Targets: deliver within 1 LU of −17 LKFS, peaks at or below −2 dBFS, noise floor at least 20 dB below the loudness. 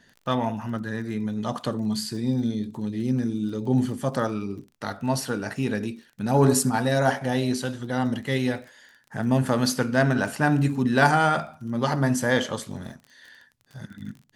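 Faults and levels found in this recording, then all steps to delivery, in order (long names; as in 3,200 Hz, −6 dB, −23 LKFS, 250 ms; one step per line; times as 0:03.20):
crackle rate 26 per second; integrated loudness −25.0 LKFS; sample peak −5.0 dBFS; target loudness −17.0 LKFS
→ click removal
level +8 dB
brickwall limiter −2 dBFS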